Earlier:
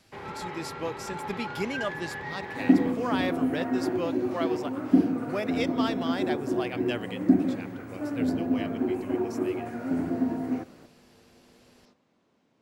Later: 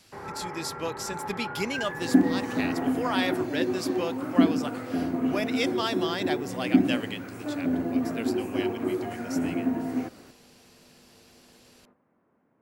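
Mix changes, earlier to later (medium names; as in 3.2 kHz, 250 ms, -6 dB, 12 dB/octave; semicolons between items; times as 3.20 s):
first sound: add low-pass 1.7 kHz 24 dB/octave; second sound: entry -0.55 s; master: add treble shelf 2.3 kHz +8 dB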